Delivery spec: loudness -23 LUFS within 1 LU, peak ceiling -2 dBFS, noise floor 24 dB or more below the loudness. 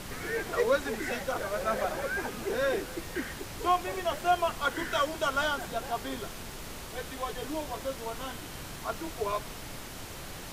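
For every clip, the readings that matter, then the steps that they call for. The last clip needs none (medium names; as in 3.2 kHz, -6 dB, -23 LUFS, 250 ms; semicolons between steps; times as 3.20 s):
noise floor -42 dBFS; noise floor target -57 dBFS; loudness -32.5 LUFS; peak level -14.5 dBFS; loudness target -23.0 LUFS
-> noise print and reduce 15 dB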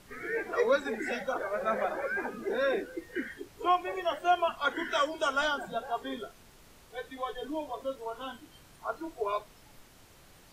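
noise floor -57 dBFS; loudness -32.0 LUFS; peak level -15.0 dBFS; loudness target -23.0 LUFS
-> trim +9 dB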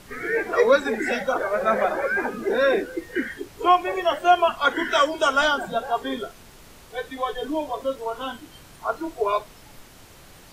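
loudness -23.0 LUFS; peak level -6.0 dBFS; noise floor -48 dBFS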